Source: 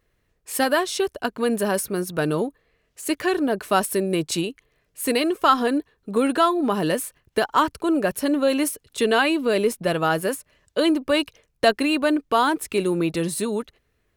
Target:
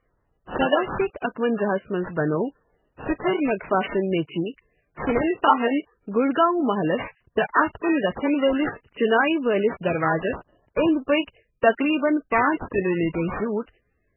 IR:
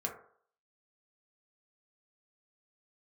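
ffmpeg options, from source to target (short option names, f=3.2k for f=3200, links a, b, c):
-filter_complex "[0:a]asettb=1/sr,asplit=3[a][b][c];[a]atrim=end=7.914[d];[b]atrim=start=7.91:end=8.69,asetpts=PTS-STARTPTS,afade=t=in:d=0.004:c=qsin,afade=t=out:st=0.776:d=0.004:c=qsin,aeval=exprs='val(0)+0.00224*(sin(2*PI*60*n/s)+sin(2*PI*2*60*n/s)/2+sin(2*PI*3*60*n/s)/3+sin(2*PI*4*60*n/s)/4+sin(2*PI*5*60*n/s)/5)':c=same[e];[c]atrim=start=8.686[f];[d][e]acrossfade=d=0.004:c1=hsin:c2=qsin[g];[g][f]acrossfade=d=0.004:c1=qsin:c2=hsin,acrusher=samples=11:mix=1:aa=0.000001:lfo=1:lforange=17.6:lforate=0.41" -ar 16000 -c:a libmp3lame -b:a 8k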